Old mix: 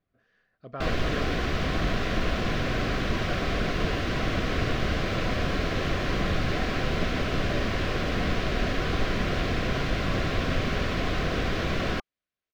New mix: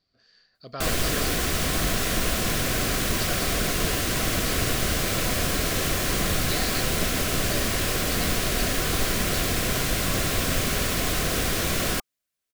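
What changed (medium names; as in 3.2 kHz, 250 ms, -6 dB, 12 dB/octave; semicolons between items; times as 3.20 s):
speech: add resonant low-pass 4.6 kHz, resonance Q 12; master: remove distance through air 240 m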